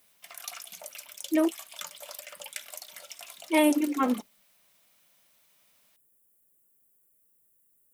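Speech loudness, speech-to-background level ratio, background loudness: -26.5 LUFS, 15.0 dB, -41.5 LUFS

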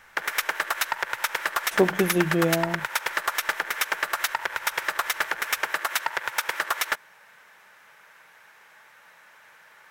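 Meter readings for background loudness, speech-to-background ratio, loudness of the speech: -27.0 LUFS, 1.5 dB, -25.5 LUFS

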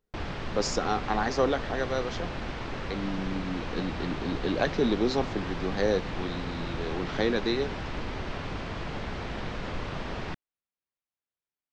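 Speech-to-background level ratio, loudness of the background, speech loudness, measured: 5.5 dB, -36.0 LUFS, -30.5 LUFS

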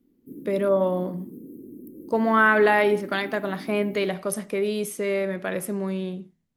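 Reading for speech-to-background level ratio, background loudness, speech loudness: 18.0 dB, -42.0 LUFS, -24.0 LUFS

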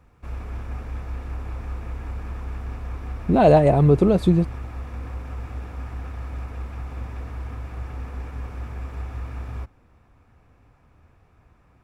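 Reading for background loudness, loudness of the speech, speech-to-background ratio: -34.5 LUFS, -17.5 LUFS, 17.0 dB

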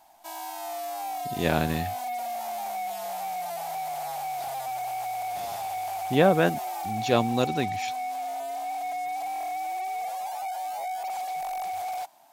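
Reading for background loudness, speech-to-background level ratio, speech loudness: -32.5 LUFS, 6.5 dB, -26.0 LUFS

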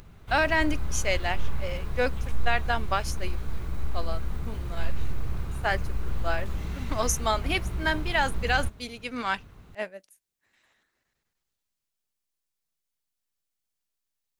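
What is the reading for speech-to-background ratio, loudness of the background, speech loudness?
6.0 dB, -35.5 LUFS, -29.5 LUFS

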